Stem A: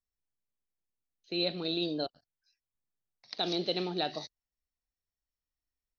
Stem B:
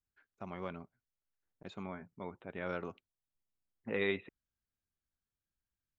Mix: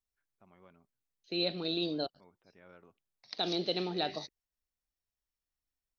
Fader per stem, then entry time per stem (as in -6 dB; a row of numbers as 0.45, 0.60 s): -1.0, -18.0 dB; 0.00, 0.00 s